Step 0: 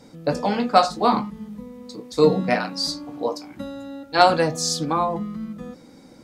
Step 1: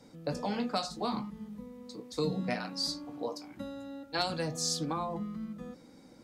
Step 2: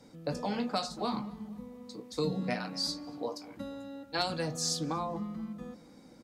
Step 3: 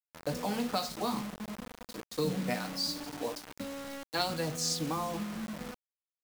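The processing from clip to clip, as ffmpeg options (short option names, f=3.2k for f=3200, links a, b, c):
-filter_complex "[0:a]acrossover=split=220|3000[a][b][c];[b]acompressor=threshold=-24dB:ratio=6[d];[a][d][c]amix=inputs=3:normalize=0,volume=-8dB"
-filter_complex "[0:a]asplit=2[a][b];[b]adelay=236,lowpass=f=2.4k:p=1,volume=-19.5dB,asplit=2[c][d];[d]adelay=236,lowpass=f=2.4k:p=1,volume=0.47,asplit=2[e][f];[f]adelay=236,lowpass=f=2.4k:p=1,volume=0.47,asplit=2[g][h];[h]adelay=236,lowpass=f=2.4k:p=1,volume=0.47[i];[a][c][e][g][i]amix=inputs=5:normalize=0"
-af "acrusher=bits=6:mix=0:aa=0.000001"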